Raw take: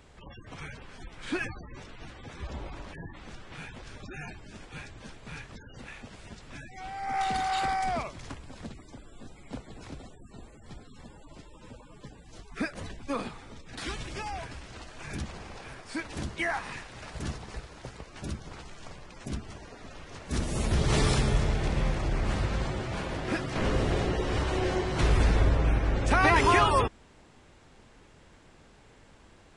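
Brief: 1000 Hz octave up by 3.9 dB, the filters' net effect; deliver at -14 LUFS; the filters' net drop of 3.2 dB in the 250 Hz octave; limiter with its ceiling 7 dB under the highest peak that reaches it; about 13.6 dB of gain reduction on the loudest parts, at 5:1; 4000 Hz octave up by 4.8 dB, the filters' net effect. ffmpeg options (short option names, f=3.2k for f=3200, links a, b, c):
-af "equalizer=f=250:t=o:g=-5,equalizer=f=1k:t=o:g=5,equalizer=f=4k:t=o:g=6,acompressor=threshold=-31dB:ratio=5,volume=25.5dB,alimiter=limit=-2dB:level=0:latency=1"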